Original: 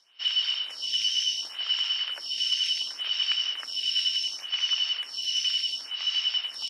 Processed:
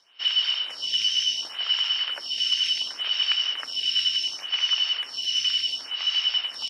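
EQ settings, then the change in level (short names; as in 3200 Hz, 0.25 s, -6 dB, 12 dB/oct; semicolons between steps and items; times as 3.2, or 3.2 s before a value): high shelf 3400 Hz -8 dB; +6.5 dB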